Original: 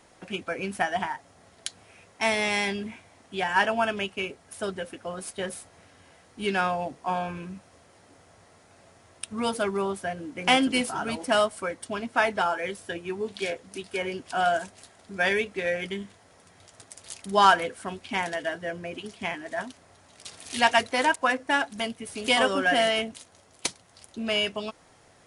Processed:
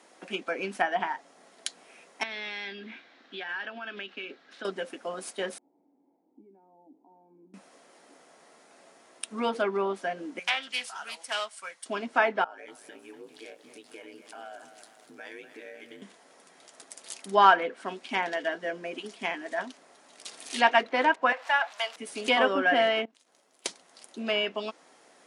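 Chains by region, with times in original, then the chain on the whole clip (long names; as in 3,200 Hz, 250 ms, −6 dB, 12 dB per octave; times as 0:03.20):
0:02.23–0:04.65: downward compressor 8 to 1, threshold −33 dBFS + loudspeaker in its box 140–4,600 Hz, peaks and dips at 180 Hz −4 dB, 440 Hz −4 dB, 640 Hz −6 dB, 940 Hz −7 dB, 1,600 Hz +6 dB, 3,800 Hz +7 dB
0:05.58–0:07.54: downward compressor, threshold −41 dBFS + formant resonators in series u + notch filter 1,100 Hz, Q 20
0:10.39–0:11.86: high-pass filter 61 Hz 24 dB per octave + guitar amp tone stack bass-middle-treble 10-0-10 + highs frequency-modulated by the lows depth 0.15 ms
0:12.44–0:16.02: downward compressor 3 to 1, threshold −44 dBFS + ring modulation 55 Hz + feedback echo at a low word length 242 ms, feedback 55%, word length 10 bits, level −10.5 dB
0:21.32–0:21.96: converter with a step at zero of −36.5 dBFS + high-pass filter 670 Hz 24 dB per octave
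0:23.05–0:23.66: mu-law and A-law mismatch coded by A + downward compressor, threshold −56 dBFS
whole clip: treble cut that deepens with the level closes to 2,700 Hz, closed at −22.5 dBFS; high-pass filter 230 Hz 24 dB per octave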